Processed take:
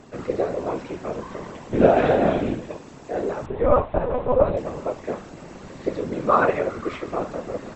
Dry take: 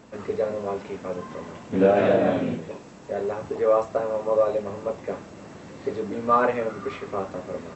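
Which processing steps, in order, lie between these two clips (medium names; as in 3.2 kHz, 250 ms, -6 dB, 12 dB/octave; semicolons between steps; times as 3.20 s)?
whisper effect; 3.46–4.57 s: monotone LPC vocoder at 8 kHz 250 Hz; trim +2 dB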